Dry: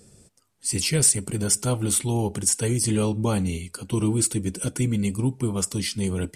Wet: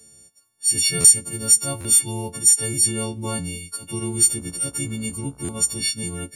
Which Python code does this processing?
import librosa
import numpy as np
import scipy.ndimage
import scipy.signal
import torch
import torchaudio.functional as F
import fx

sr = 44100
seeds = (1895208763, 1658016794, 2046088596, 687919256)

y = fx.freq_snap(x, sr, grid_st=4)
y = fx.dmg_buzz(y, sr, base_hz=60.0, harmonics=25, level_db=-46.0, tilt_db=-5, odd_only=False, at=(4.12, 5.9), fade=0.02)
y = fx.buffer_glitch(y, sr, at_s=(1.0, 1.8, 5.44), block=512, repeats=3)
y = F.gain(torch.from_numpy(y), -5.0).numpy()